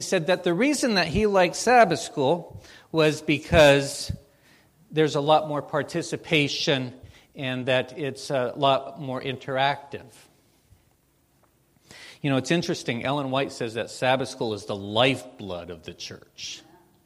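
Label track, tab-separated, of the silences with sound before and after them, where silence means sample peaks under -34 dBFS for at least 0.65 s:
4.160000	4.930000	silence
10.010000	11.910000	silence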